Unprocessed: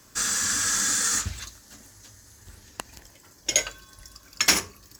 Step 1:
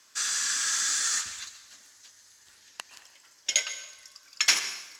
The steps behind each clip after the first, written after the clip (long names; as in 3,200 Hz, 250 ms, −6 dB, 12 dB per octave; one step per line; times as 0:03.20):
resonant band-pass 3,400 Hz, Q 0.66
dense smooth reverb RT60 1 s, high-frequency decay 0.9×, pre-delay 105 ms, DRR 11 dB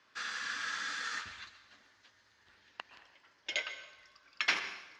high-frequency loss of the air 330 metres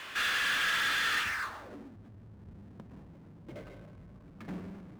low-pass filter sweep 3,000 Hz → 170 Hz, 0:01.22–0:01.98
power curve on the samples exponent 0.5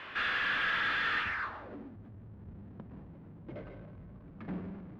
high-frequency loss of the air 350 metres
level +2 dB